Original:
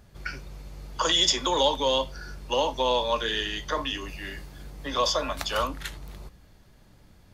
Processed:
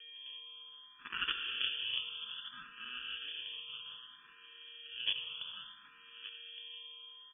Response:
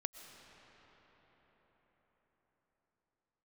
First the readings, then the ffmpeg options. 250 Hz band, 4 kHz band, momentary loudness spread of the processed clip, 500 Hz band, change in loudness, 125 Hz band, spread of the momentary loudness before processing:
-30.0 dB, -10.0 dB, 16 LU, -38.5 dB, -14.0 dB, under -30 dB, 20 LU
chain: -filter_complex "[0:a]aderivative,acrossover=split=680[s0][s1];[s0]acompressor=mode=upward:threshold=0.00112:ratio=2.5[s2];[s1]aeval=exprs='0.299*(cos(1*acos(clip(val(0)/0.299,-1,1)))-cos(1*PI/2))+0.0473*(cos(5*acos(clip(val(0)/0.299,-1,1)))-cos(5*PI/2))+0.0841*(cos(7*acos(clip(val(0)/0.299,-1,1)))-cos(7*PI/2))':c=same[s3];[s2][s3]amix=inputs=2:normalize=0,aeval=exprs='val(0)+0.00112*sin(2*PI*1100*n/s)':c=same,aresample=16000,aeval=exprs='0.0335*(abs(mod(val(0)/0.0335+3,4)-2)-1)':c=same,aresample=44100,acrusher=samples=32:mix=1:aa=0.000001,asplit=2[s4][s5];[s5]adelay=1166,volume=0.316,highshelf=f=4000:g=-26.2[s6];[s4][s6]amix=inputs=2:normalize=0[s7];[1:a]atrim=start_sample=2205,asetrate=70560,aresample=44100[s8];[s7][s8]afir=irnorm=-1:irlink=0,lowpass=f=3000:t=q:w=0.5098,lowpass=f=3000:t=q:w=0.6013,lowpass=f=3000:t=q:w=0.9,lowpass=f=3000:t=q:w=2.563,afreqshift=-3500,asplit=2[s9][s10];[s10]afreqshift=0.62[s11];[s9][s11]amix=inputs=2:normalize=1,volume=6.68"

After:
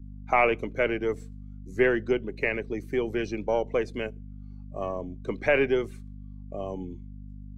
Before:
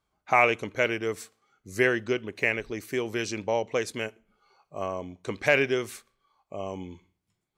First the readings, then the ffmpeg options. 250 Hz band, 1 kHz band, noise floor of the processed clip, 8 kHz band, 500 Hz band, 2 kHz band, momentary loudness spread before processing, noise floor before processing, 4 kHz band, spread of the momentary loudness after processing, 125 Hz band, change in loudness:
+2.5 dB, -1.0 dB, -42 dBFS, under -10 dB, +1.5 dB, -3.0 dB, 17 LU, -81 dBFS, -5.5 dB, 21 LU, +1.0 dB, -0.5 dB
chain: -filter_complex "[0:a]aeval=exprs='if(lt(val(0),0),0.708*val(0),val(0))':c=same,acrossover=split=3200[s0][s1];[s1]acompressor=threshold=0.00398:ratio=4:attack=1:release=60[s2];[s0][s2]amix=inputs=2:normalize=0,highshelf=f=4400:g=-4,aeval=exprs='val(0)+0.00891*(sin(2*PI*50*n/s)+sin(2*PI*2*50*n/s)/2+sin(2*PI*3*50*n/s)/3+sin(2*PI*4*50*n/s)/4+sin(2*PI*5*50*n/s)/5)':c=same,acrossover=split=230|860|3800[s3][s4][s5][s6];[s4]lowshelf=f=420:g=8.5[s7];[s6]acontrast=52[s8];[s3][s7][s5][s8]amix=inputs=4:normalize=0,afftdn=nr=13:nf=-43"

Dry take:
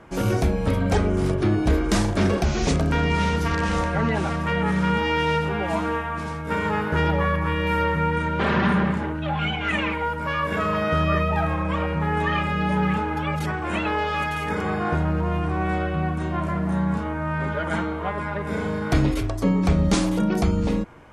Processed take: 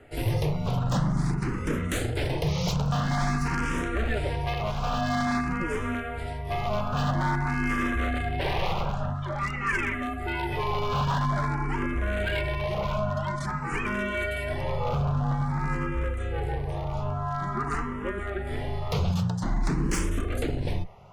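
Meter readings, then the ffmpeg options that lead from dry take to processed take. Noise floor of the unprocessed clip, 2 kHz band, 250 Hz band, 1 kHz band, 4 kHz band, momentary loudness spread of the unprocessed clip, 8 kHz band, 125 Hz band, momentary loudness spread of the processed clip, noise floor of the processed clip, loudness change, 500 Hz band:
-29 dBFS, -5.0 dB, -7.5 dB, -5.0 dB, -4.5 dB, 5 LU, -3.5 dB, -3.5 dB, 5 LU, -33 dBFS, -5.5 dB, -6.5 dB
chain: -filter_complex "[0:a]afreqshift=-220,aeval=exprs='0.133*(abs(mod(val(0)/0.133+3,4)-2)-1)':c=same,asplit=2[s0][s1];[s1]afreqshift=0.49[s2];[s0][s2]amix=inputs=2:normalize=1"

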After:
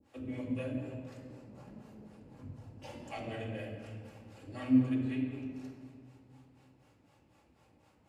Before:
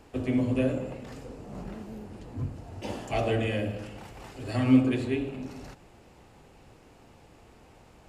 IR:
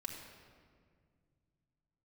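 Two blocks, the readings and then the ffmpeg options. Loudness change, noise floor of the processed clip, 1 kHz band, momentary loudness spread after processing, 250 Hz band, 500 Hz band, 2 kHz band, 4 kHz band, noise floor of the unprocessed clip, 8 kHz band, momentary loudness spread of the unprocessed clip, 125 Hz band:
-7.0 dB, -67 dBFS, -11.5 dB, 23 LU, -6.5 dB, -12.5 dB, -10.5 dB, -12.0 dB, -56 dBFS, no reading, 20 LU, -9.0 dB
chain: -filter_complex "[0:a]highpass=86,acrossover=split=450[s0][s1];[s0]aeval=exprs='val(0)*(1-1/2+1/2*cos(2*PI*4*n/s))':c=same[s2];[s1]aeval=exprs='val(0)*(1-1/2-1/2*cos(2*PI*4*n/s))':c=same[s3];[s2][s3]amix=inputs=2:normalize=0[s4];[1:a]atrim=start_sample=2205[s5];[s4][s5]afir=irnorm=-1:irlink=0,volume=0.531"

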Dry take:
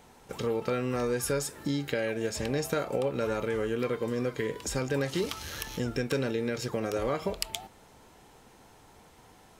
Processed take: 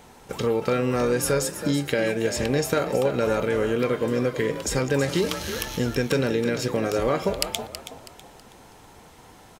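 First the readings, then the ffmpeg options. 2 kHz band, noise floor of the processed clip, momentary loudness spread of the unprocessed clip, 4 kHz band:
+7.0 dB, -50 dBFS, 5 LU, +7.0 dB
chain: -filter_complex "[0:a]asplit=5[s0][s1][s2][s3][s4];[s1]adelay=324,afreqshift=38,volume=0.282[s5];[s2]adelay=648,afreqshift=76,volume=0.0955[s6];[s3]adelay=972,afreqshift=114,volume=0.0327[s7];[s4]adelay=1296,afreqshift=152,volume=0.0111[s8];[s0][s5][s6][s7][s8]amix=inputs=5:normalize=0,volume=2.11"

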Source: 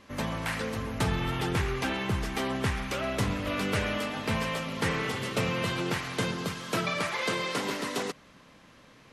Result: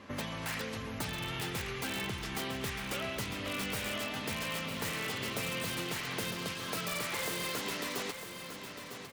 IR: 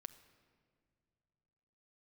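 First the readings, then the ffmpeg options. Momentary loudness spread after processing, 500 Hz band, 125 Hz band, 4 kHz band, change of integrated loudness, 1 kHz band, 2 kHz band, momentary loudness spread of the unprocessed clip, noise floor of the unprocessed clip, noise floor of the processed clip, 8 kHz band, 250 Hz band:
5 LU, -7.5 dB, -9.5 dB, -2.0 dB, -5.5 dB, -7.0 dB, -4.5 dB, 3 LU, -56 dBFS, -45 dBFS, 0.0 dB, -8.0 dB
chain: -filter_complex "[0:a]highpass=66,highshelf=f=4900:g=-9.5,acrossover=split=2400[s0][s1];[s0]acompressor=threshold=0.00891:ratio=12[s2];[s1]aeval=exprs='(mod(70.8*val(0)+1,2)-1)/70.8':c=same[s3];[s2][s3]amix=inputs=2:normalize=0,aecho=1:1:953|1906|2859|3812:0.355|0.131|0.0486|0.018,volume=1.58"

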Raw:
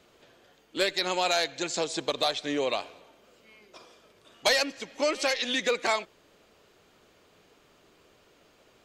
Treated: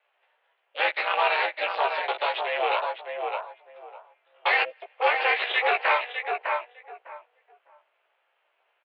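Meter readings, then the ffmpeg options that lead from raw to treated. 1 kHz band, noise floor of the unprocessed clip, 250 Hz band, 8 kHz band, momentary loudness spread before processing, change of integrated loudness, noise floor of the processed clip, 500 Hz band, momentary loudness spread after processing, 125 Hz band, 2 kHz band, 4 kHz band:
+8.0 dB, -62 dBFS, under -15 dB, under -40 dB, 6 LU, +2.5 dB, -73 dBFS, +0.5 dB, 13 LU, under -40 dB, +7.0 dB, -3.0 dB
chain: -filter_complex "[0:a]aemphasis=mode=production:type=riaa,afwtdn=0.0178,asplit=2[s0][s1];[s1]adelay=604,lowpass=f=1200:p=1,volume=0.631,asplit=2[s2][s3];[s3]adelay=604,lowpass=f=1200:p=1,volume=0.21,asplit=2[s4][s5];[s5]adelay=604,lowpass=f=1200:p=1,volume=0.21[s6];[s0][s2][s4][s6]amix=inputs=4:normalize=0,aresample=11025,asoftclip=type=tanh:threshold=0.0841,aresample=44100,aeval=exprs='val(0)*sin(2*PI*150*n/s)':c=same,asplit=2[s7][s8];[s8]adelay=16,volume=0.668[s9];[s7][s9]amix=inputs=2:normalize=0,aeval=exprs='0.133*(cos(1*acos(clip(val(0)/0.133,-1,1)))-cos(1*PI/2))+0.0422*(cos(2*acos(clip(val(0)/0.133,-1,1)))-cos(2*PI/2))':c=same,highpass=f=410:t=q:w=0.5412,highpass=f=410:t=q:w=1.307,lowpass=f=2700:t=q:w=0.5176,lowpass=f=2700:t=q:w=0.7071,lowpass=f=2700:t=q:w=1.932,afreqshift=91,volume=2.82"

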